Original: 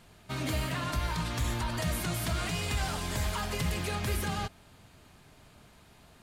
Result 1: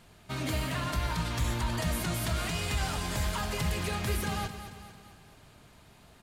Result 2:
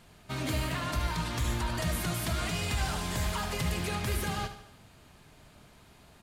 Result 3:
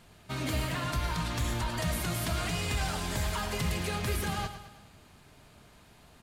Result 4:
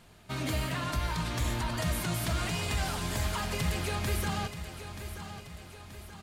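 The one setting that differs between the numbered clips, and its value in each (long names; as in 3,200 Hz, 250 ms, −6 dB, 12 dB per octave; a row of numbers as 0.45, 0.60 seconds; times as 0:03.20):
repeating echo, delay time: 223, 74, 109, 930 milliseconds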